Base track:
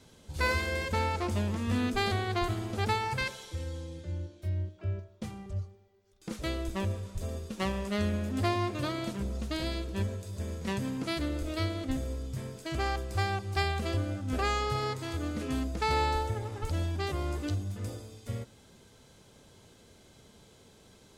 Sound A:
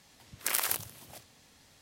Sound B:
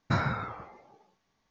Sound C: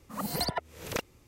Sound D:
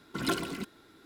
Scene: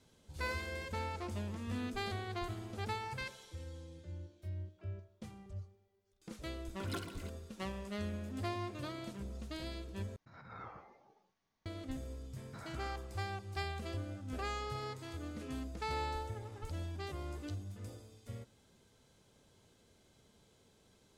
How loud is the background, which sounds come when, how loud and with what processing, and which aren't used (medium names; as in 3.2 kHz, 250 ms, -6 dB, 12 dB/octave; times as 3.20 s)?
base track -10 dB
6.65 s: add D -12 dB
10.16 s: replace with B -14.5 dB + compressor with a negative ratio -38 dBFS
12.43 s: add B -17 dB + peak limiter -24 dBFS
not used: A, C